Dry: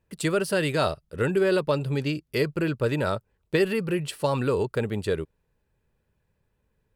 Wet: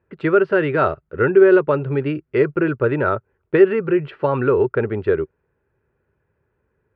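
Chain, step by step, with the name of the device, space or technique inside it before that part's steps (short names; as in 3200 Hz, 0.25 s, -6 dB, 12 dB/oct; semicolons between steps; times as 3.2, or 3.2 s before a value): bass cabinet (speaker cabinet 68–2300 Hz, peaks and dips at 190 Hz -6 dB, 380 Hz +8 dB, 1400 Hz +7 dB); gain +4.5 dB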